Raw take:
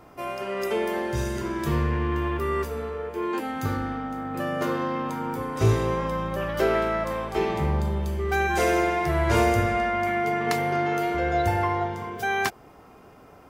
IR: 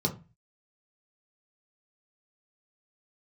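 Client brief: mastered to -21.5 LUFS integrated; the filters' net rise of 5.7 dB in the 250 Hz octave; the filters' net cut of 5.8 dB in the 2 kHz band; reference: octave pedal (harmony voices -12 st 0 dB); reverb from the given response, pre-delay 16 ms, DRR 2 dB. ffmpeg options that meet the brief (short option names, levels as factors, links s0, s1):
-filter_complex "[0:a]equalizer=f=250:t=o:g=8.5,equalizer=f=2000:t=o:g=-7.5,asplit=2[s0][s1];[1:a]atrim=start_sample=2205,adelay=16[s2];[s1][s2]afir=irnorm=-1:irlink=0,volume=0.355[s3];[s0][s3]amix=inputs=2:normalize=0,asplit=2[s4][s5];[s5]asetrate=22050,aresample=44100,atempo=2,volume=1[s6];[s4][s6]amix=inputs=2:normalize=0,volume=0.501"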